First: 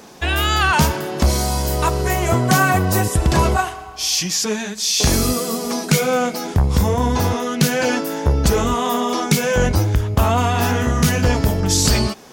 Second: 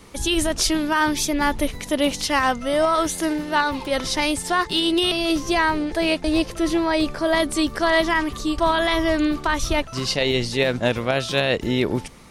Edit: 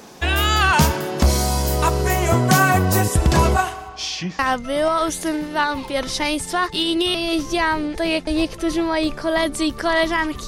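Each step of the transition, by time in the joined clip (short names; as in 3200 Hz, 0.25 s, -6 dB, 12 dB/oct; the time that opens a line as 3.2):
first
3.88–4.39 LPF 7700 Hz -> 1200 Hz
4.39 switch to second from 2.36 s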